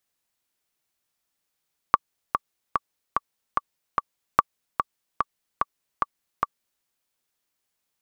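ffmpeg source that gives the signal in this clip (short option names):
-f lavfi -i "aevalsrc='pow(10,(-1.5-6.5*gte(mod(t,6*60/147),60/147))/20)*sin(2*PI*1150*mod(t,60/147))*exp(-6.91*mod(t,60/147)/0.03)':d=4.89:s=44100"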